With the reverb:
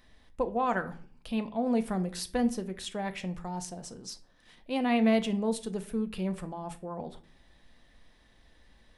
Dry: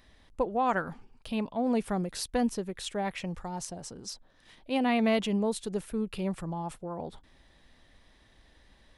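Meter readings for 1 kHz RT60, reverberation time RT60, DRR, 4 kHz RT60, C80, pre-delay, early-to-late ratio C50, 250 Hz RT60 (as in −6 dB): 0.40 s, 0.45 s, 8.0 dB, 0.30 s, 21.0 dB, 4 ms, 16.0 dB, 0.70 s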